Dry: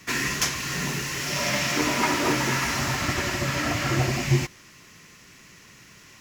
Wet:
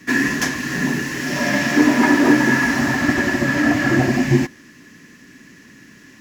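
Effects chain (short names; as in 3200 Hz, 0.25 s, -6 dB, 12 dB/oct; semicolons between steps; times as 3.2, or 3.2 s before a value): dynamic EQ 770 Hz, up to +7 dB, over -42 dBFS, Q 1.3; small resonant body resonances 260/1700 Hz, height 18 dB, ringing for 35 ms; gain -1.5 dB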